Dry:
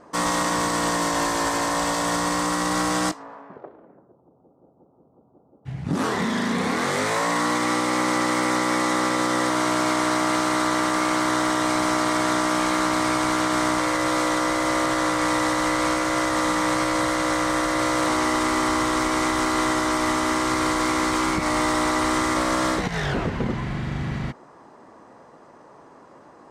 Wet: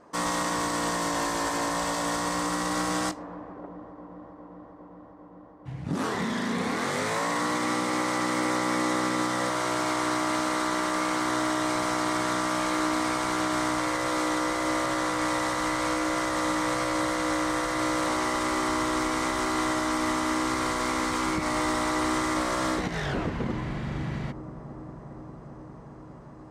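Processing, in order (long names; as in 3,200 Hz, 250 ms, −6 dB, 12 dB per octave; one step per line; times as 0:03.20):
delay with a low-pass on its return 404 ms, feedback 83%, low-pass 680 Hz, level −14 dB
level −5 dB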